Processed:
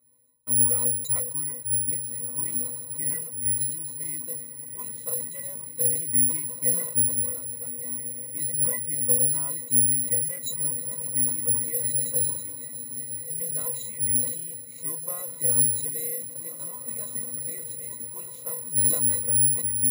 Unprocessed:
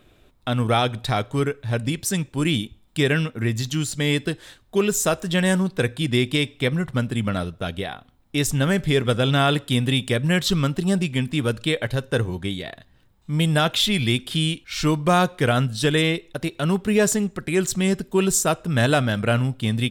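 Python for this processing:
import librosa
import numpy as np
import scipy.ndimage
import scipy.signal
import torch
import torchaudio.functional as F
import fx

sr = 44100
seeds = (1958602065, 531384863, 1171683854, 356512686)

p1 = fx.octave_resonator(x, sr, note='B', decay_s=0.16)
p2 = p1 + fx.echo_diffused(p1, sr, ms=1770, feedback_pct=45, wet_db=-9.0, dry=0)
p3 = (np.kron(p2[::4], np.eye(4)[0]) * 4)[:len(p2)]
p4 = fx.low_shelf(p3, sr, hz=410.0, db=-11.5)
p5 = fx.sustainer(p4, sr, db_per_s=66.0)
y = p5 * 10.0 ** (-2.0 / 20.0)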